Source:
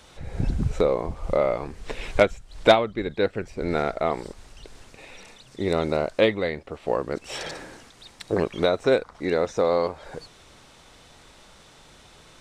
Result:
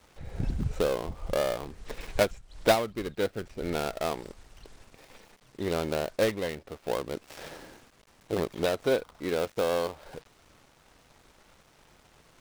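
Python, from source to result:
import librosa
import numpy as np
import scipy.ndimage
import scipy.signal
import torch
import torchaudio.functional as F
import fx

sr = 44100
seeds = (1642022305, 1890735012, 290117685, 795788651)

y = fx.dead_time(x, sr, dead_ms=0.19)
y = y * librosa.db_to_amplitude(-5.5)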